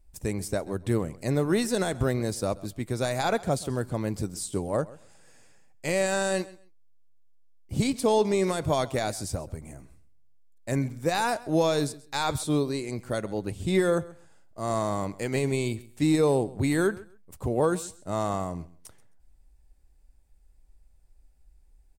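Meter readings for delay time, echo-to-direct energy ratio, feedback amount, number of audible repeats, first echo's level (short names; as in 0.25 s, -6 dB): 0.132 s, -20.0 dB, 19%, 2, -20.0 dB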